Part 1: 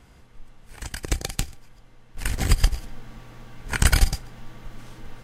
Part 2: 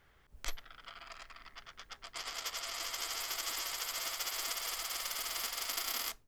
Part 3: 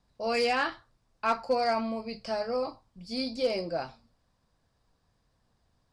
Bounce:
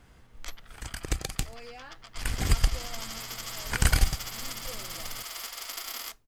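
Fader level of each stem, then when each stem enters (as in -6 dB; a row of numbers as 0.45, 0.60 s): -4.5, -0.5, -19.5 dB; 0.00, 0.00, 1.25 s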